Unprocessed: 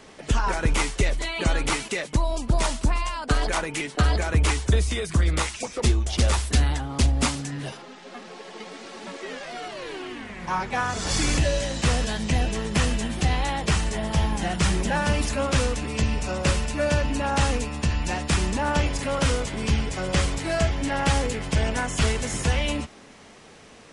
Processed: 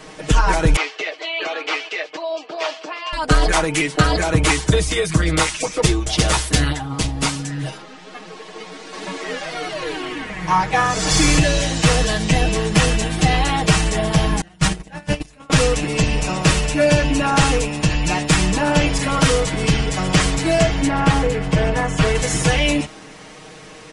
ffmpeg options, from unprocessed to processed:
ffmpeg -i in.wav -filter_complex "[0:a]asettb=1/sr,asplit=3[link_01][link_02][link_03];[link_01]atrim=end=0.764[link_04];[link_02]atrim=start=0.76:end=3.13,asetpts=PTS-STARTPTS,afade=type=in:duration=0.004:curve=qsin,afade=type=out:start_time=2.366:duration=0.004:curve=qsin,highpass=frequency=470:width=0.5412,highpass=frequency=470:width=1.3066,equalizer=frequency=540:width_type=q:width=4:gain=-6,equalizer=frequency=930:width_type=q:width=4:gain=-9,equalizer=frequency=1400:width_type=q:width=4:gain=-6,equalizer=frequency=2000:width_type=q:width=4:gain=-5,equalizer=frequency=3800:width_type=q:width=4:gain=-7,lowpass=frequency=4200:width=0.5412,lowpass=frequency=4200:width=1.3066[link_05];[link_03]atrim=start=3.126[link_06];[link_04][link_05]acrossfade=duration=0.004:curve1=hsin:curve2=qsin[link_07];[link_07][link_06]acrossfade=duration=0.004:curve1=qsin:curve2=hsin,asettb=1/sr,asplit=3[link_08][link_09][link_10];[link_08]atrim=end=6.724[link_11];[link_09]atrim=start=6.72:end=8.93,asetpts=PTS-STARTPTS,afade=type=in:duration=0.004:curve=qsin,afade=type=out:start_time=2.206:duration=0.004:curve=qsin,flanger=delay=4.1:depth=5.5:regen=72:speed=1.4:shape=sinusoidal[link_12];[link_10]atrim=start=8.926[link_13];[link_11][link_12]acrossfade=duration=0.004:curve1=hsin:curve2=qsin[link_14];[link_14][link_13]acrossfade=duration=0.004:curve1=qsin:curve2=hsin,asettb=1/sr,asplit=3[link_15][link_16][link_17];[link_15]atrim=end=14.414[link_18];[link_16]atrim=start=14.41:end=15.5,asetpts=PTS-STARTPTS,afade=type=in:duration=0.004:curve=qsin,afade=type=out:start_time=1.086:duration=0.004:curve=qsin,agate=range=-28dB:threshold=-21dB:ratio=16:release=100:detection=peak[link_19];[link_17]atrim=start=15.496[link_20];[link_18][link_19]acrossfade=duration=0.004:curve1=hsin:curve2=qsin[link_21];[link_21][link_20]acrossfade=duration=0.004:curve1=qsin:curve2=hsin,asettb=1/sr,asplit=3[link_22][link_23][link_24];[link_22]atrim=end=20.874[link_25];[link_23]atrim=start=20.87:end=22.15,asetpts=PTS-STARTPTS,afade=type=in:duration=0.004:curve=qsin,afade=type=out:start_time=1.276:duration=0.004:curve=qsin,highshelf=frequency=3400:gain=-11.5[link_26];[link_24]atrim=start=22.146[link_27];[link_25][link_26]acrossfade=duration=0.004:curve1=hsin:curve2=qsin[link_28];[link_28][link_27]acrossfade=duration=0.004:curve1=qsin:curve2=hsin,aecho=1:1:6.4:0.98,acontrast=50" out.wav

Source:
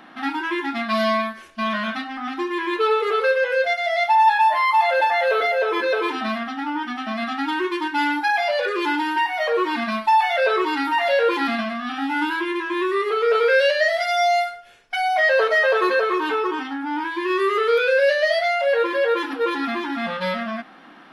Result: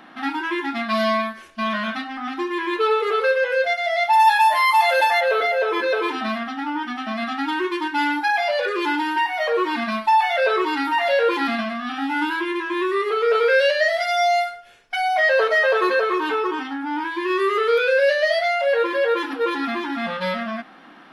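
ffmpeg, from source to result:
ffmpeg -i in.wav -filter_complex "[0:a]asplit=3[link_01][link_02][link_03];[link_01]afade=type=out:start_time=4.12:duration=0.02[link_04];[link_02]aemphasis=mode=production:type=75kf,afade=type=in:start_time=4.12:duration=0.02,afade=type=out:start_time=5.19:duration=0.02[link_05];[link_03]afade=type=in:start_time=5.19:duration=0.02[link_06];[link_04][link_05][link_06]amix=inputs=3:normalize=0" out.wav

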